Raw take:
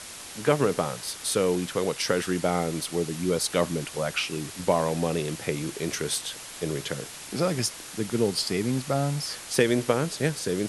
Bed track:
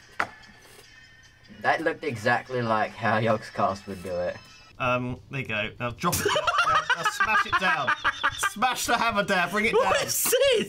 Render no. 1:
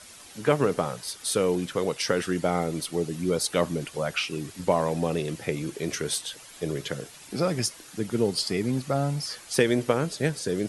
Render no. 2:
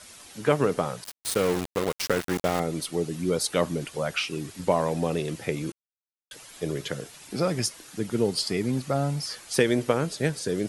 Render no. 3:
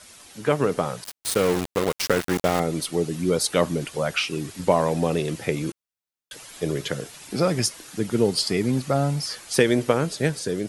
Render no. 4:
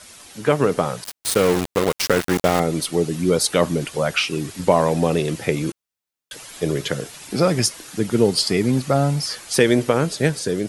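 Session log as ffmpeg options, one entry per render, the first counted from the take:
-af "afftdn=nr=9:nf=-41"
-filter_complex "[0:a]asettb=1/sr,asplit=3[s0][s1][s2];[s0]atrim=end=1.044[s3];[s1]atrim=start=1.04:end=2.6,asetpts=PTS-STARTPTS,afade=t=in:d=0.004:c=qsin,afade=t=out:st=1.556:d=0.004:c=qsin,aeval=exprs='val(0)*gte(abs(val(0)),0.0473)':c=same[s4];[s2]atrim=start=2.596[s5];[s3][s4]acrossfade=d=0.004:c1=hsin:c2=qsin[s6];[s6][s5]acrossfade=d=0.004:c1=qsin:c2=hsin,asplit=3[s7][s8][s9];[s7]atrim=end=5.72,asetpts=PTS-STARTPTS,afade=t=out:st=5.716:d=0.004:c=hsin[s10];[s8]atrim=start=5.72:end=6.31,asetpts=PTS-STARTPTS,volume=0[s11];[s9]atrim=start=6.31,asetpts=PTS-STARTPTS,afade=t=in:d=0.004:c=hsin[s12];[s10][s11][s12]concat=n=3:v=0:a=1"
-af "dynaudnorm=f=470:g=3:m=1.58"
-af "volume=1.58,alimiter=limit=0.708:level=0:latency=1"

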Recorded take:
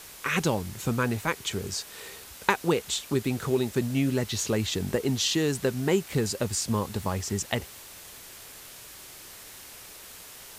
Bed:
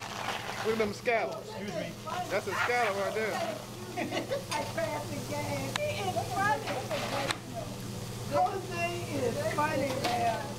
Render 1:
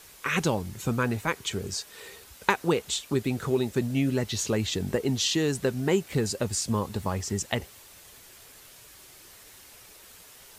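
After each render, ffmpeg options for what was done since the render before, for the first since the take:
-af "afftdn=nr=6:nf=-46"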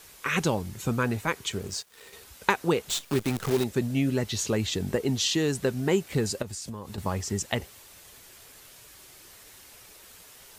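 -filter_complex "[0:a]asettb=1/sr,asplit=3[s0][s1][s2];[s0]atrim=end=1.514[s3];[s1]atrim=start=1.51:end=2.13,asetpts=PTS-STARTPTS,afade=t=in:d=0.004:c=qsin,afade=t=out:st=0.616:d=0.004:c=qsin,aeval=exprs='sgn(val(0))*max(abs(val(0))-0.00398,0)':c=same[s4];[s2]atrim=start=2.126[s5];[s3][s4]acrossfade=d=0.004:c1=hsin:c2=qsin[s6];[s6][s5]acrossfade=d=0.004:c1=qsin:c2=hsin,asettb=1/sr,asplit=3[s7][s8][s9];[s7]atrim=end=2.894[s10];[s8]atrim=start=2.89:end=3.64,asetpts=PTS-STARTPTS,afade=t=in:d=0.004:c=qsin,afade=t=out:st=0.746:d=0.004:c=qsin,acrusher=bits=6:dc=4:mix=0:aa=0.000001[s11];[s9]atrim=start=3.636[s12];[s10][s11]acrossfade=d=0.004:c1=hsin:c2=qsin[s13];[s13][s12]acrossfade=d=0.004:c1=qsin:c2=hsin,asettb=1/sr,asplit=3[s14][s15][s16];[s14]atrim=end=6.424[s17];[s15]atrim=start=6.42:end=6.98,asetpts=PTS-STARTPTS,afade=t=in:d=0.004:c=qsin,afade=t=out:st=0.556:d=0.004:c=qsin,acompressor=threshold=0.02:ratio=6:attack=3.2:release=140:knee=1:detection=peak[s18];[s16]atrim=start=6.976[s19];[s17][s18]acrossfade=d=0.004:c1=hsin:c2=qsin[s20];[s20][s19]acrossfade=d=0.004:c1=qsin:c2=hsin"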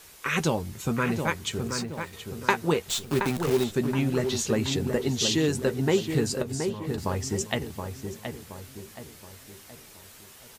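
-filter_complex "[0:a]asplit=2[s0][s1];[s1]adelay=13,volume=0.282[s2];[s0][s2]amix=inputs=2:normalize=0,asplit=2[s3][s4];[s4]adelay=723,lowpass=f=2000:p=1,volume=0.501,asplit=2[s5][s6];[s6]adelay=723,lowpass=f=2000:p=1,volume=0.46,asplit=2[s7][s8];[s8]adelay=723,lowpass=f=2000:p=1,volume=0.46,asplit=2[s9][s10];[s10]adelay=723,lowpass=f=2000:p=1,volume=0.46,asplit=2[s11][s12];[s12]adelay=723,lowpass=f=2000:p=1,volume=0.46,asplit=2[s13][s14];[s14]adelay=723,lowpass=f=2000:p=1,volume=0.46[s15];[s3][s5][s7][s9][s11][s13][s15]amix=inputs=7:normalize=0"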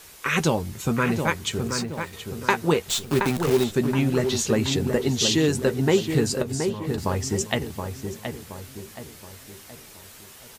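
-af "volume=1.5,alimiter=limit=0.794:level=0:latency=1"

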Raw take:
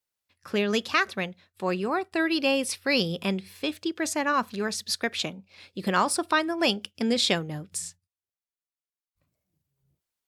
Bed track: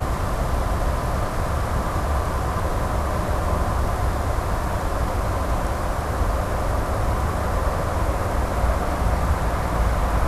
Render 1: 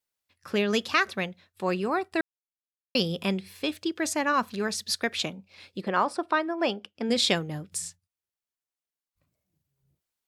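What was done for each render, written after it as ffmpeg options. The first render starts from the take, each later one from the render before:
-filter_complex "[0:a]asplit=3[s0][s1][s2];[s0]afade=t=out:st=5.8:d=0.02[s3];[s1]bandpass=f=690:t=q:w=0.5,afade=t=in:st=5.8:d=0.02,afade=t=out:st=7.09:d=0.02[s4];[s2]afade=t=in:st=7.09:d=0.02[s5];[s3][s4][s5]amix=inputs=3:normalize=0,asplit=3[s6][s7][s8];[s6]atrim=end=2.21,asetpts=PTS-STARTPTS,afade=t=out:st=2.206:d=0.004:c=hsin[s9];[s7]atrim=start=2.21:end=2.95,asetpts=PTS-STARTPTS,volume=0[s10];[s8]atrim=start=2.95,asetpts=PTS-STARTPTS,afade=t=in:d=0.004:c=hsin[s11];[s9][s10][s11]concat=n=3:v=0:a=1"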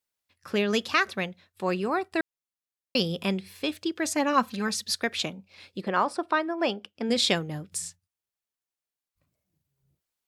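-filter_complex "[0:a]asettb=1/sr,asplit=3[s0][s1][s2];[s0]atrim=end=4.164[s3];[s1]atrim=start=4.16:end=4.86,asetpts=PTS-STARTPTS,afade=t=in:d=0.004:c=qsin,afade=t=out:st=0.696:d=0.004:c=qsin,aecho=1:1:3.8:0.65,atrim=end_sample=30870[s4];[s2]atrim=start=4.856[s5];[s3][s4]acrossfade=d=0.004:c1=hsin:c2=qsin[s6];[s6][s5]acrossfade=d=0.004:c1=qsin:c2=hsin"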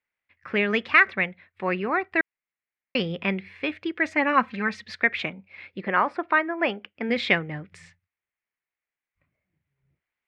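-af "lowpass=f=2100:t=q:w=4"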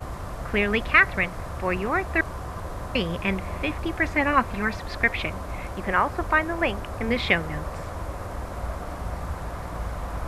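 -filter_complex "[1:a]volume=0.299[s0];[0:a][s0]amix=inputs=2:normalize=0"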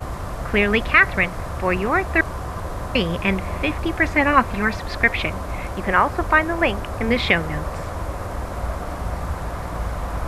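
-af "volume=1.78,alimiter=limit=0.794:level=0:latency=1"

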